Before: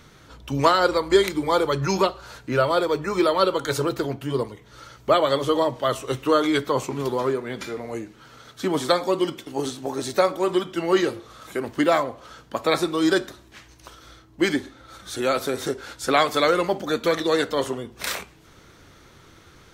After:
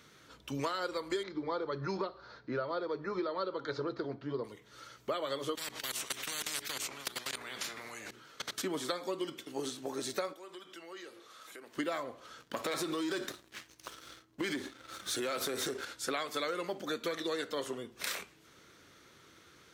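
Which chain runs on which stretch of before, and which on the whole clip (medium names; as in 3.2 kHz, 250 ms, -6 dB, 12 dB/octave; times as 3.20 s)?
1.23–4.44 s: steep low-pass 4.7 kHz + peaking EQ 2.8 kHz -13.5 dB 0.75 oct
5.55–8.62 s: level held to a coarse grid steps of 23 dB + hum notches 60/120/180/240/300/360/420 Hz + spectrum-flattening compressor 10:1
10.33–11.75 s: high-pass 580 Hz 6 dB/octave + compression 3:1, threshold -41 dBFS
12.40–15.85 s: high-pass 49 Hz + waveshaping leveller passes 2 + compression, threshold -20 dBFS
whole clip: high-pass 300 Hz 6 dB/octave; peaking EQ 810 Hz -5.5 dB 0.86 oct; compression 6:1, threshold -26 dBFS; trim -6 dB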